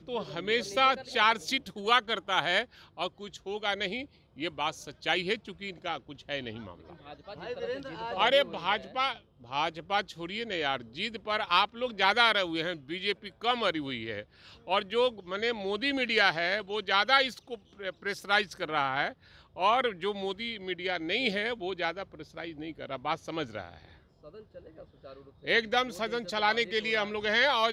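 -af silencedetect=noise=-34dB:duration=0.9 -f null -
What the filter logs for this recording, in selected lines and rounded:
silence_start: 23.74
silence_end: 25.47 | silence_duration: 1.73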